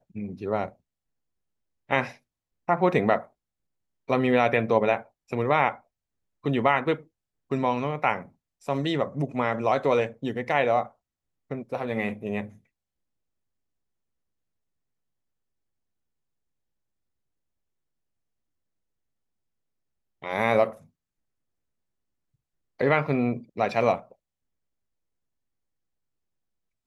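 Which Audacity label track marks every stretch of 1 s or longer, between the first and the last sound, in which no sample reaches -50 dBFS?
0.730000	1.890000	silence
12.580000	20.220000	silence
20.860000	22.790000	silence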